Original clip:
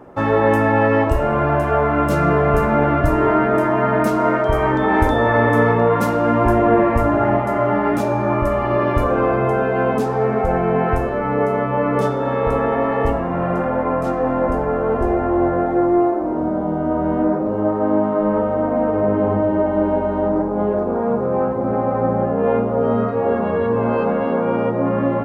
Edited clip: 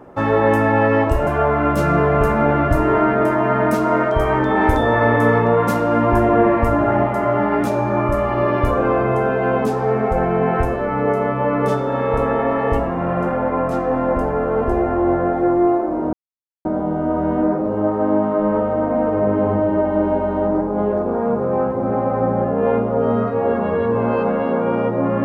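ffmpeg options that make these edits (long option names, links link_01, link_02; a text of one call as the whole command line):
ffmpeg -i in.wav -filter_complex "[0:a]asplit=3[link_01][link_02][link_03];[link_01]atrim=end=1.272[link_04];[link_02]atrim=start=1.598:end=16.46,asetpts=PTS-STARTPTS,afade=type=out:start_time=14.858:duration=0.004:curve=hsin,apad=pad_dur=0.52[link_05];[link_03]atrim=start=16.46,asetpts=PTS-STARTPTS,afade=type=in:duration=0.004:curve=hsin[link_06];[link_05][link_06]concat=n=2:v=0:a=1[link_07];[link_04][link_07]acrossfade=duration=0.004:curve1=hsin:curve2=hsin" out.wav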